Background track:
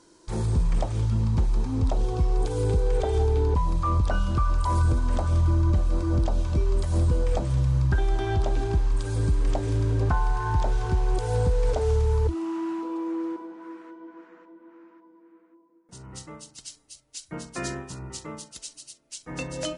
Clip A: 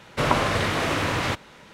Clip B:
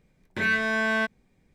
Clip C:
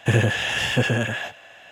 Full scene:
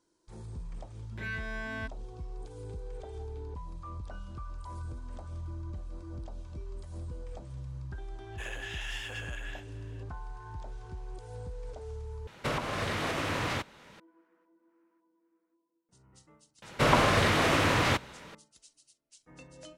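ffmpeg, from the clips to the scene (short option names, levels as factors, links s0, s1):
-filter_complex "[1:a]asplit=2[s0][s1];[0:a]volume=0.119[s2];[3:a]highpass=900[s3];[s0]alimiter=limit=0.15:level=0:latency=1:release=414[s4];[s1]asoftclip=type=tanh:threshold=0.282[s5];[s2]asplit=2[s6][s7];[s6]atrim=end=12.274[s8];[s4]atrim=end=1.73,asetpts=PTS-STARTPTS,volume=0.562[s9];[s7]atrim=start=13.996[s10];[2:a]atrim=end=1.54,asetpts=PTS-STARTPTS,volume=0.2,afade=t=in:d=0.004:c=hsin,afade=t=out:st=1.536:d=0.004:c=hsin,adelay=810[s11];[s3]atrim=end=1.71,asetpts=PTS-STARTPTS,volume=0.178,afade=t=in:d=0.004:c=hsin,afade=t=out:st=1.706:d=0.004:c=hsin,adelay=8320[s12];[s5]atrim=end=1.73,asetpts=PTS-STARTPTS,volume=0.944,afade=t=in:d=0.004:c=hsin,afade=t=out:st=1.726:d=0.004:c=hsin,adelay=16620[s13];[s8][s9]acrossfade=d=0.004:c1=hsin:c2=hsin[s14];[s14][s10]acrossfade=d=0.004:c1=hsin:c2=hsin[s15];[s15][s11][s12][s13]amix=inputs=4:normalize=0"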